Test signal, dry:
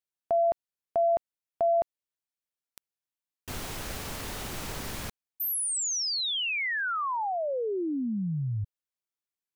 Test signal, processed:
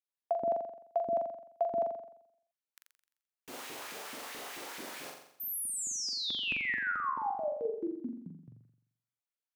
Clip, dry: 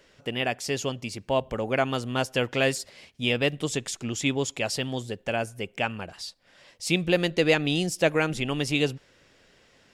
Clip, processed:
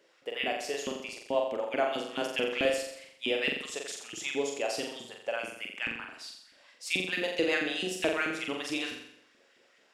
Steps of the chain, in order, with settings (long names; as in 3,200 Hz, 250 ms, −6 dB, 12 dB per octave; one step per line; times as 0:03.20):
auto-filter high-pass saw up 4.6 Hz 240–2,700 Hz
flutter between parallel walls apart 7.4 metres, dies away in 0.7 s
level −9 dB